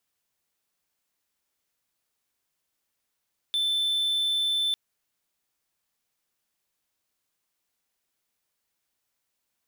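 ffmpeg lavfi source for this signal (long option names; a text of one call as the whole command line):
ffmpeg -f lavfi -i "aevalsrc='0.0891*(1-4*abs(mod(3530*t+0.25,1)-0.5))':duration=1.2:sample_rate=44100" out.wav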